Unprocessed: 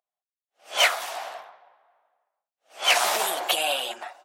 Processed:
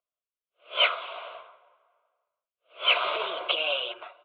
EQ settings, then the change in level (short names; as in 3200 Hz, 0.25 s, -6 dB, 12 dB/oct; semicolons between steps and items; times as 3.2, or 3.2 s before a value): steep low-pass 3600 Hz 48 dB/oct; fixed phaser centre 1200 Hz, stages 8; 0.0 dB